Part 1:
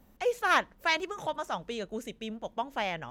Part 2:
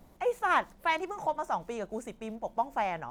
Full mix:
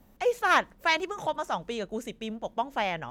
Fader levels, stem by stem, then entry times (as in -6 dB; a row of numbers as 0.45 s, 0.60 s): +1.0 dB, -10.5 dB; 0.00 s, 0.00 s